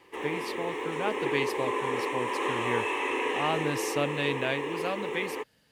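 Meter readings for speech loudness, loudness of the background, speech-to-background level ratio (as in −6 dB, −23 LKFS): −33.5 LKFS, −31.5 LKFS, −2.0 dB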